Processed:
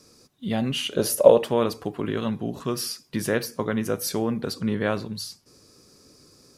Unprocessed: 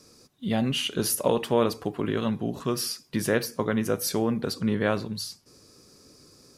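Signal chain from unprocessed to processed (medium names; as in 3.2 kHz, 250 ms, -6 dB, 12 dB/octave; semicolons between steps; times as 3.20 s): 0.91–1.48 s: peaking EQ 570 Hz +14 dB 0.64 oct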